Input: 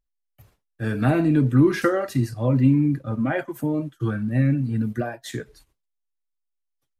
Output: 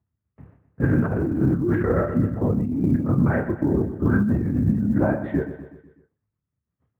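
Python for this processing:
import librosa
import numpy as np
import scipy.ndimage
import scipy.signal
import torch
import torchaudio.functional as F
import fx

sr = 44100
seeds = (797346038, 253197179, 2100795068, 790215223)

y = fx.dynamic_eq(x, sr, hz=1400.0, q=4.7, threshold_db=-45.0, ratio=4.0, max_db=5)
y = scipy.signal.sosfilt(scipy.signal.butter(4, 1800.0, 'lowpass', fs=sr, output='sos'), y)
y = fx.lpc_vocoder(y, sr, seeds[0], excitation='whisper', order=8)
y = scipy.signal.sosfilt(scipy.signal.butter(4, 86.0, 'highpass', fs=sr, output='sos'), y)
y = fx.level_steps(y, sr, step_db=10, at=(1.3, 4.06))
y = fx.low_shelf(y, sr, hz=350.0, db=9.5)
y = fx.quant_float(y, sr, bits=6)
y = fx.doubler(y, sr, ms=29.0, db=-7.5)
y = fx.echo_feedback(y, sr, ms=124, feedback_pct=52, wet_db=-12.0)
y = fx.over_compress(y, sr, threshold_db=-20.0, ratio=-1.0)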